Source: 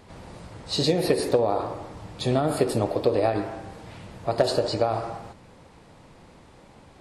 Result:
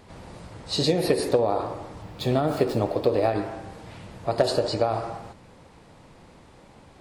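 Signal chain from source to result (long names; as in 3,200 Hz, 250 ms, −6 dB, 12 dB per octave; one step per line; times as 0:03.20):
0:02.02–0:03.33: running median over 5 samples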